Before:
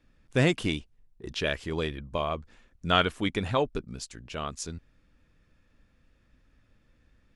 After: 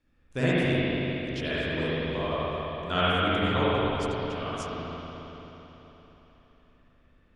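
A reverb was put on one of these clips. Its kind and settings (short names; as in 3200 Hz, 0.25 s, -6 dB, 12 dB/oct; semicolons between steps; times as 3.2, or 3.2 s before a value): spring tank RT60 3.9 s, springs 44/60 ms, chirp 50 ms, DRR -10 dB; gain -8 dB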